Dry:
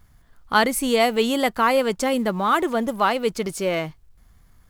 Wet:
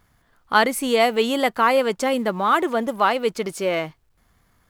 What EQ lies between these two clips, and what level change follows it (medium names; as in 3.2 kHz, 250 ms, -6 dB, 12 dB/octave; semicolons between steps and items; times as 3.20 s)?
tone controls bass -4 dB, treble -4 dB; bass shelf 67 Hz -11.5 dB; +1.5 dB